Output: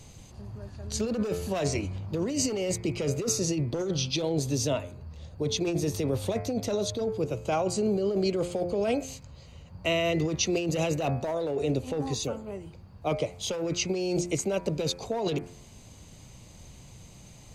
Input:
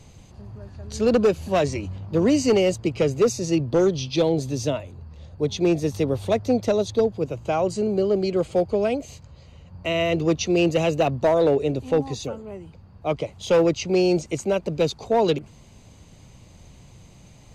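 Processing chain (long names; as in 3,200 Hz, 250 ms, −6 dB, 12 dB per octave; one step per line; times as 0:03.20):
high-shelf EQ 5,600 Hz +8 dB
hum removal 87.89 Hz, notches 29
compressor whose output falls as the input rises −23 dBFS, ratio −1
level −4 dB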